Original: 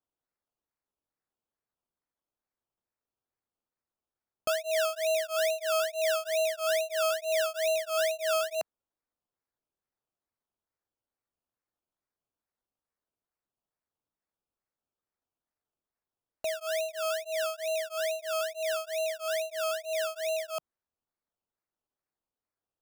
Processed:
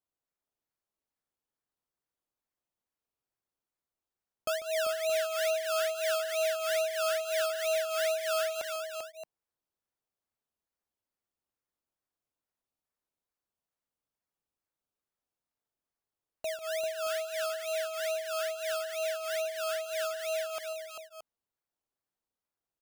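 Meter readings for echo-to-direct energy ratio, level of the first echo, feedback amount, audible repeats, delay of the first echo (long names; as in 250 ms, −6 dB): −3.5 dB, −13.5 dB, repeats not evenly spaced, 3, 145 ms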